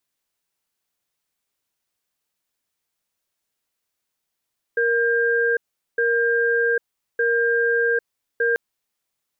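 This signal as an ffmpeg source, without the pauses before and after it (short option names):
-f lavfi -i "aevalsrc='0.106*(sin(2*PI*468*t)+sin(2*PI*1600*t))*clip(min(mod(t,1.21),0.8-mod(t,1.21))/0.005,0,1)':d=3.79:s=44100"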